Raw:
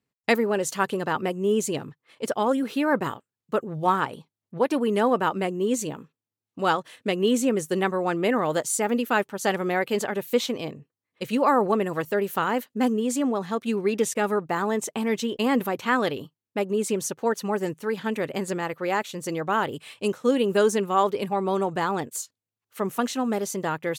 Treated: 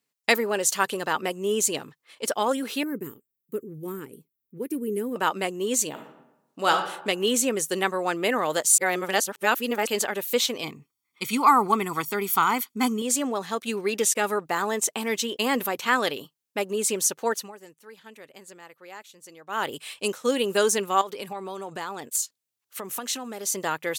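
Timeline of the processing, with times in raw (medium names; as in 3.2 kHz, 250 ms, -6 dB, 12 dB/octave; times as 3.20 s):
2.83–5.16 s: FFT filter 420 Hz 0 dB, 670 Hz -28 dB, 1 kHz -25 dB, 2.2 kHz -16 dB, 3.8 kHz -26 dB, 10 kHz -5 dB, 15 kHz +6 dB
5.89–6.72 s: reverb throw, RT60 0.94 s, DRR 4 dB
8.78–9.87 s: reverse
10.63–13.02 s: comb 0.9 ms, depth 90%
17.32–19.67 s: dip -17.5 dB, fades 0.20 s
21.01–23.54 s: compression 16:1, threshold -28 dBFS
whole clip: high-pass 380 Hz 6 dB/octave; treble shelf 3 kHz +9.5 dB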